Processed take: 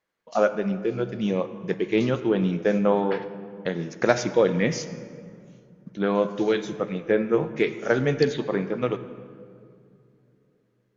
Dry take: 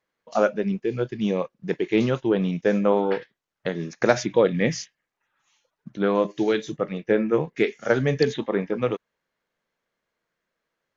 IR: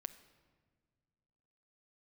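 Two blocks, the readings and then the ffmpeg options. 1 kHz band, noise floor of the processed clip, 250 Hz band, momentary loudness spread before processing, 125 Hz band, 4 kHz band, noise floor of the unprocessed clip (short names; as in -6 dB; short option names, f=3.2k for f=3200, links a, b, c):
-0.5 dB, -68 dBFS, -0.5 dB, 9 LU, -0.5 dB, -1.0 dB, -82 dBFS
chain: -filter_complex "[1:a]atrim=start_sample=2205,asetrate=26019,aresample=44100[a];[0:a][a]afir=irnorm=-1:irlink=0"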